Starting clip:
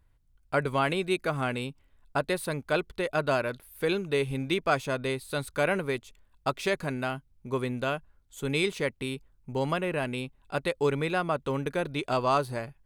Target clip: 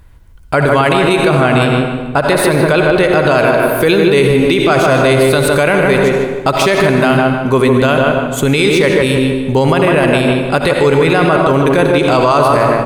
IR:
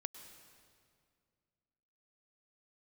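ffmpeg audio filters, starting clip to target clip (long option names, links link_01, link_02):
-filter_complex "[0:a]asettb=1/sr,asplit=3[link_01][link_02][link_03];[link_01]atrim=end=1.174[link_04];[link_02]atrim=start=1.17:end=3.39,asetpts=PTS-STARTPTS,afade=type=in:duration=0.004:curve=qsin,afade=type=out:start_time=2.216:duration=0.004:curve=qsin,highshelf=frequency=6000:gain=-4.5[link_05];[link_03]atrim=start=3.386[link_06];[link_04][link_05]acrossfade=duration=0.004:curve1=hsin:curve2=qsin[link_07];[link_07][link_06]acrossfade=duration=0.004:curve1=qsin:curve2=hsin,asplit=2[link_08][link_09];[link_09]adelay=153,lowpass=frequency=1800:poles=1,volume=-4dB,asplit=2[link_10][link_11];[link_11]adelay=153,lowpass=frequency=1800:poles=1,volume=0.37,asplit=2[link_12][link_13];[link_13]adelay=153,lowpass=frequency=1800:poles=1,volume=0.37,asplit=2[link_14][link_15];[link_15]adelay=153,lowpass=frequency=1800:poles=1,volume=0.37,asplit=2[link_16][link_17];[link_17]adelay=153,lowpass=frequency=1800:poles=1,volume=0.37[link_18];[link_08][link_10][link_12][link_14][link_16][link_18]amix=inputs=6:normalize=0[link_19];[1:a]atrim=start_sample=2205,asetrate=74970,aresample=44100[link_20];[link_19][link_20]afir=irnorm=-1:irlink=0,alimiter=level_in=32dB:limit=-1dB:release=50:level=0:latency=1,volume=-1dB"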